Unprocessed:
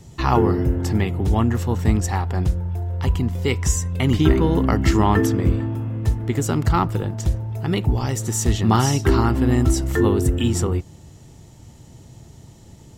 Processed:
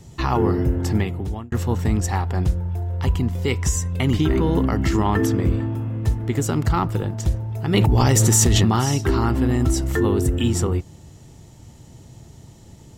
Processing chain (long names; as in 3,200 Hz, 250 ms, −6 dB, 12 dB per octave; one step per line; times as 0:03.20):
brickwall limiter −10 dBFS, peak gain reduction 7 dB
0:00.97–0:01.52: fade out
0:07.74–0:08.65: envelope flattener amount 100%